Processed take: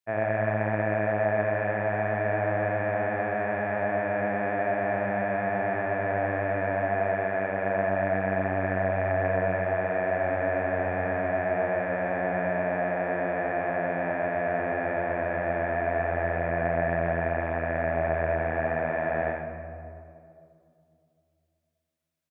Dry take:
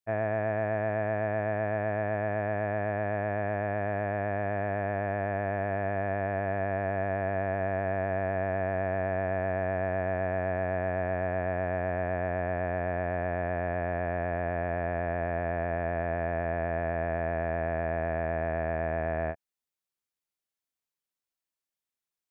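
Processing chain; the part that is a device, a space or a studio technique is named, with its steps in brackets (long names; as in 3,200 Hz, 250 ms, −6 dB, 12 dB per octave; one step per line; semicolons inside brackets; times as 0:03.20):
PA in a hall (high-pass filter 110 Hz; parametric band 2,000 Hz +3.5 dB 1.9 octaves; single-tap delay 84 ms −4.5 dB; convolution reverb RT60 2.5 s, pre-delay 36 ms, DRR 5.5 dB)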